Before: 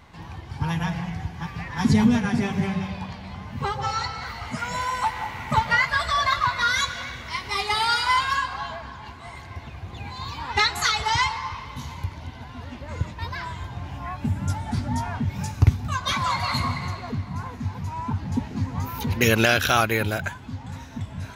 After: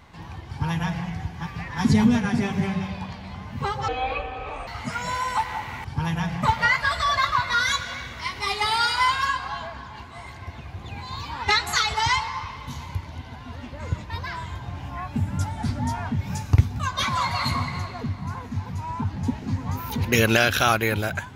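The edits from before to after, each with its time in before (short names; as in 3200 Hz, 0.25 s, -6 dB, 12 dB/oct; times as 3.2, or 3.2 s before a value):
0.48–1.06 copy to 5.51
3.88–4.34 speed 58%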